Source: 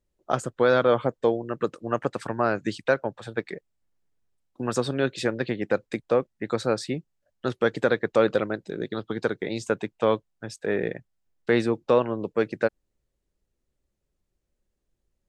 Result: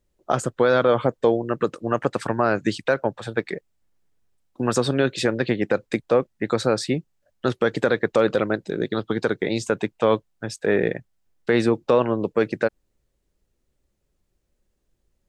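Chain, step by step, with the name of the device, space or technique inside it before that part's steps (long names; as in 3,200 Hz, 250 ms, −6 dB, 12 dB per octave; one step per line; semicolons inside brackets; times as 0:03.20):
clipper into limiter (hard clipping −8.5 dBFS, distortion −47 dB; brickwall limiter −14 dBFS, peak gain reduction 5.5 dB)
level +6 dB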